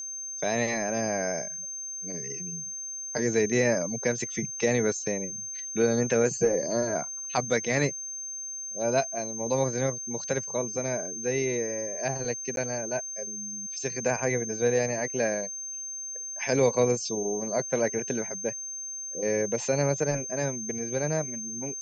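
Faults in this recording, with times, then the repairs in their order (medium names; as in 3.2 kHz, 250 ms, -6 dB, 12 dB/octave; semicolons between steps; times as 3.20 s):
whine 6.3 kHz -34 dBFS
12.56–12.57 s: dropout 12 ms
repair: band-stop 6.3 kHz, Q 30; interpolate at 12.56 s, 12 ms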